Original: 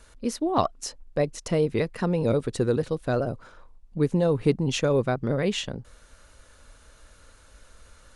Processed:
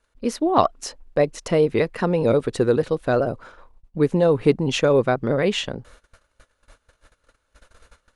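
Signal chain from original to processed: gate -48 dBFS, range -21 dB; tone controls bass -6 dB, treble -6 dB; trim +6.5 dB

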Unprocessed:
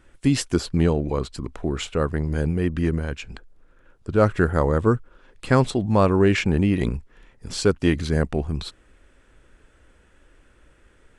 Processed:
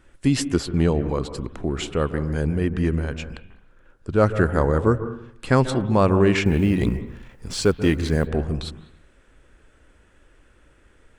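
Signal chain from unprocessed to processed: 6.45–8.28 s: companding laws mixed up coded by mu; on a send: treble shelf 3.6 kHz -11.5 dB + reverberation RT60 0.65 s, pre-delay 137 ms, DRR 11.5 dB

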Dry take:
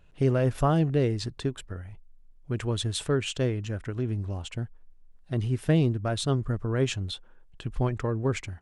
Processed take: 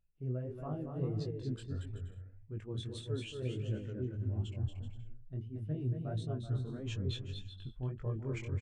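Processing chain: hum notches 50/100 Hz; reverse; compression 6:1, threshold -36 dBFS, peak gain reduction 17.5 dB; reverse; bouncing-ball echo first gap 230 ms, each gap 0.65×, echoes 5; chorus 1.6 Hz, delay 18.5 ms, depth 5.5 ms; spectral contrast expander 1.5:1; trim +3 dB

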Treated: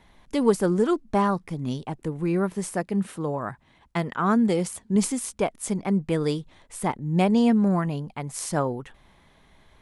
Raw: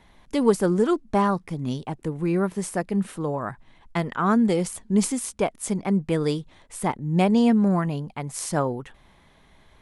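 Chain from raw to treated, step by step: 2.73–4.96 s: high-pass 48 Hz; trim -1 dB

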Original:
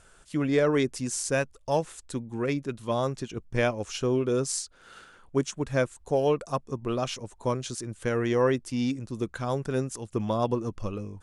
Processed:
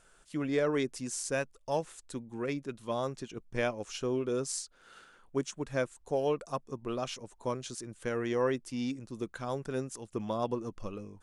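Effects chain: peaking EQ 77 Hz -8.5 dB 1.4 oct; trim -5.5 dB

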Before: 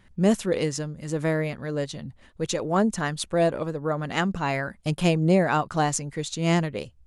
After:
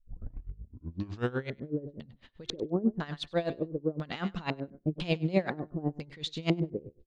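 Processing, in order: tape start-up on the opening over 1.64 s; LFO low-pass square 1 Hz 370–3900 Hz; de-hum 354.1 Hz, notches 6; on a send: feedback delay 99 ms, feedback 15%, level -15.5 dB; on the sum: logarithmic tremolo 8 Hz, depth 20 dB; trim -3 dB

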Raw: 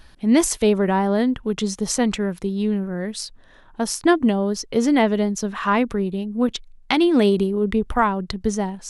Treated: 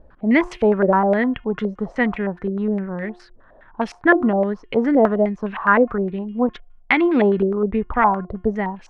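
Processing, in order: de-hum 356 Hz, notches 9; step-sequenced low-pass 9.7 Hz 550–2500 Hz; trim -1 dB

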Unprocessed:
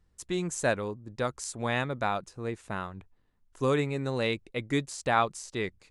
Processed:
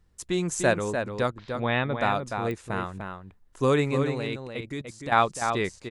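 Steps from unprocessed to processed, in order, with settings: 1.30–1.95 s: Chebyshev low-pass 3.7 kHz, order 5; 4.03–5.12 s: level held to a coarse grid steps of 18 dB; echo from a far wall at 51 m, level -6 dB; clicks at 2.51 s, -25 dBFS; trim +4 dB

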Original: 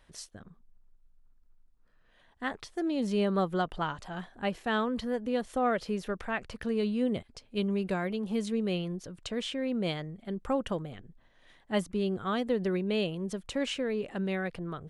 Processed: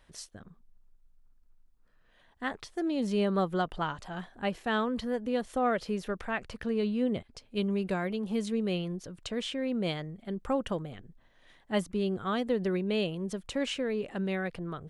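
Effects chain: 6.62–7.33 s: treble shelf 8.1 kHz -9.5 dB

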